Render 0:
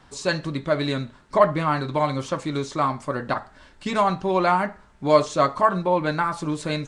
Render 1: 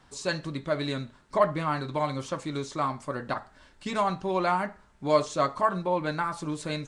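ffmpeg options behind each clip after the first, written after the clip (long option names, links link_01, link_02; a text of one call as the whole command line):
ffmpeg -i in.wav -af "highshelf=frequency=6300:gain=4.5,volume=-6dB" out.wav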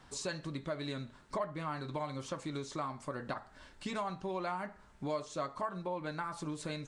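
ffmpeg -i in.wav -af "acompressor=threshold=-38dB:ratio=3" out.wav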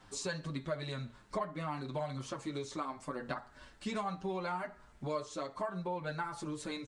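ffmpeg -i in.wav -filter_complex "[0:a]asplit=2[link_01][link_02];[link_02]adelay=7.1,afreqshift=-0.73[link_03];[link_01][link_03]amix=inputs=2:normalize=1,volume=3dB" out.wav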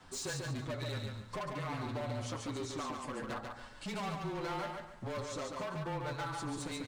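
ffmpeg -i in.wav -filter_complex "[0:a]asoftclip=type=hard:threshold=-39dB,afreqshift=-21,asplit=2[link_01][link_02];[link_02]aecho=0:1:142|284|426|568:0.631|0.189|0.0568|0.017[link_03];[link_01][link_03]amix=inputs=2:normalize=0,volume=2dB" out.wav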